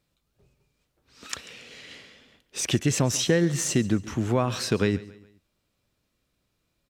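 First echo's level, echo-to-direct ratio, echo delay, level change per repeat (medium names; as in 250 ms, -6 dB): -19.0 dB, -18.5 dB, 139 ms, -8.0 dB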